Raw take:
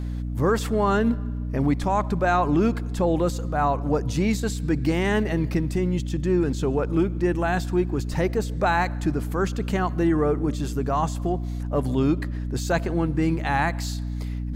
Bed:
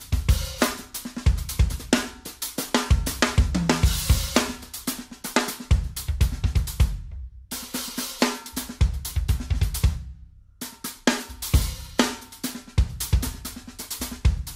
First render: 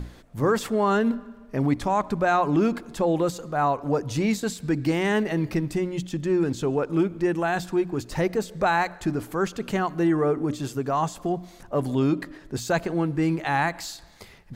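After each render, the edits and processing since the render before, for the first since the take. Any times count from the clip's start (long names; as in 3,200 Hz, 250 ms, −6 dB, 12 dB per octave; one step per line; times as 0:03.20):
mains-hum notches 60/120/180/240/300 Hz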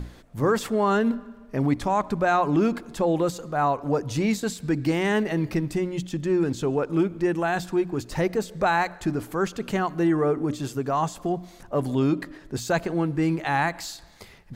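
no processing that can be heard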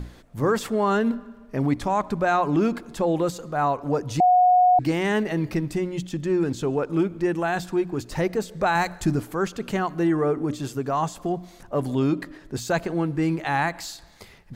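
0:04.20–0:04.79: beep over 727 Hz −13 dBFS
0:08.75–0:09.20: bass and treble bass +7 dB, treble +8 dB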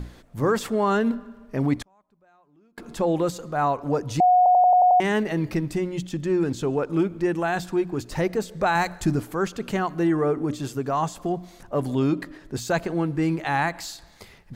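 0:01.82–0:02.78: gate with flip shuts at −30 dBFS, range −38 dB
0:04.37: stutter in place 0.09 s, 7 plays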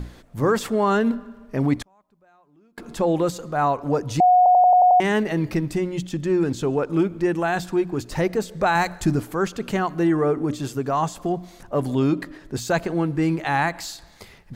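level +2 dB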